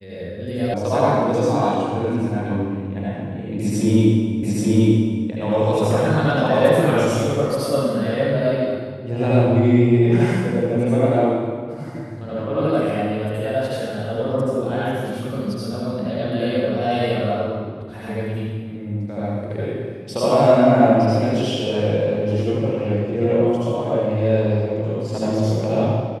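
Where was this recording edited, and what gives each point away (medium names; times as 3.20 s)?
0.74 s: sound stops dead
4.43 s: repeat of the last 0.83 s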